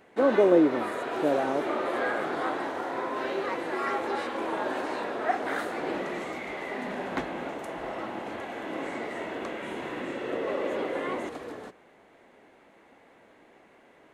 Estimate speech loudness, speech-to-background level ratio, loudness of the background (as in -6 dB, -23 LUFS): -24.5 LUFS, 7.5 dB, -32.0 LUFS